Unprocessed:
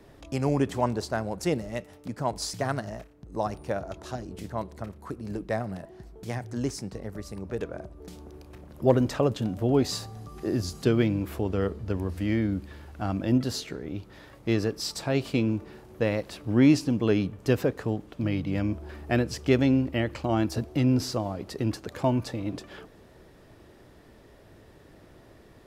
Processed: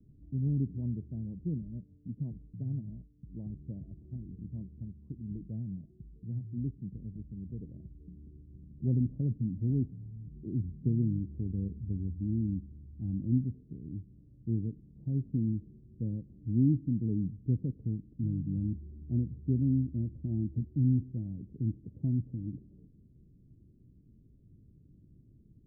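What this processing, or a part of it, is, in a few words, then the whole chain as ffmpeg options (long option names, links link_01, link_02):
the neighbour's flat through the wall: -af "lowpass=frequency=250:width=0.5412,lowpass=frequency=250:width=1.3066,equalizer=frequency=140:width_type=o:width=0.71:gain=4,volume=-4dB"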